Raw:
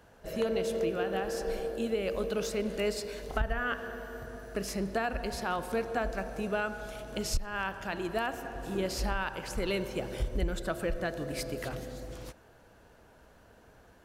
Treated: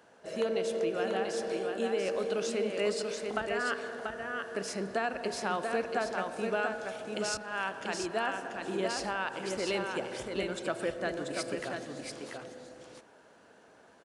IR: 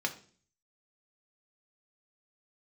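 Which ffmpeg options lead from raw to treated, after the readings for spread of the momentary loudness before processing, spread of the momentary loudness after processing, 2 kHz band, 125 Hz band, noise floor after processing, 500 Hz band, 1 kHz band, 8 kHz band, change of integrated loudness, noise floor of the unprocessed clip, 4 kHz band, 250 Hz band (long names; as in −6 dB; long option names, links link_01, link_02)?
8 LU, 7 LU, +1.5 dB, −7.5 dB, −59 dBFS, +1.0 dB, +1.5 dB, +1.0 dB, +0.5 dB, −59 dBFS, +1.5 dB, −1.5 dB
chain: -filter_complex "[0:a]highpass=230,asplit=2[link_01][link_02];[link_02]aecho=0:1:687:0.596[link_03];[link_01][link_03]amix=inputs=2:normalize=0,aresample=22050,aresample=44100"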